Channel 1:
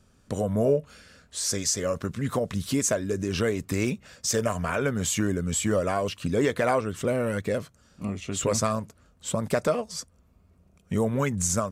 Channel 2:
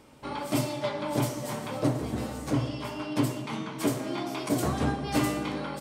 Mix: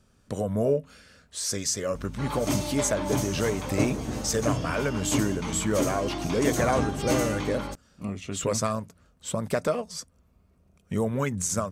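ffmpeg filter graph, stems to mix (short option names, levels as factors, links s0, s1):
-filter_complex "[0:a]bandreject=f=88.2:t=h:w=4,bandreject=f=176.4:t=h:w=4,bandreject=f=264.6:t=h:w=4,volume=0.841[s0];[1:a]equalizer=f=6400:t=o:w=0.28:g=12.5,aeval=exprs='val(0)+0.0126*(sin(2*PI*50*n/s)+sin(2*PI*2*50*n/s)/2+sin(2*PI*3*50*n/s)/3+sin(2*PI*4*50*n/s)/4+sin(2*PI*5*50*n/s)/5)':c=same,adelay=1950,volume=0.944[s1];[s0][s1]amix=inputs=2:normalize=0,bandreject=f=7100:w=28"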